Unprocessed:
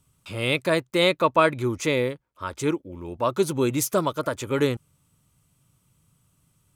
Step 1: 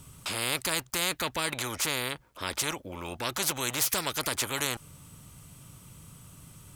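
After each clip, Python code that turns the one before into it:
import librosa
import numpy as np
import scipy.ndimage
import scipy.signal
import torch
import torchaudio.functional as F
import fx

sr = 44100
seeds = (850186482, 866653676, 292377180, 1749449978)

y = fx.spectral_comp(x, sr, ratio=4.0)
y = F.gain(torch.from_numpy(y), -6.0).numpy()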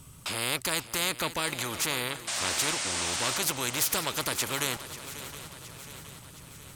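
y = fx.spec_paint(x, sr, seeds[0], shape='noise', start_s=2.27, length_s=1.11, low_hz=550.0, high_hz=9500.0, level_db=-32.0)
y = fx.echo_swing(y, sr, ms=719, ratio=3, feedback_pct=56, wet_db=-14.0)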